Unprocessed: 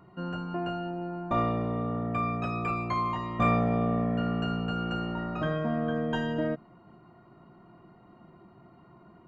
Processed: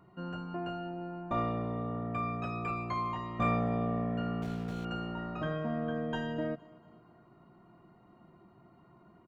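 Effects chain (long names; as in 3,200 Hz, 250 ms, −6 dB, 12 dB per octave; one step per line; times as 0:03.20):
0:04.42–0:04.85: running median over 25 samples
on a send: repeating echo 233 ms, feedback 51%, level −22.5 dB
on the sum: level −5 dB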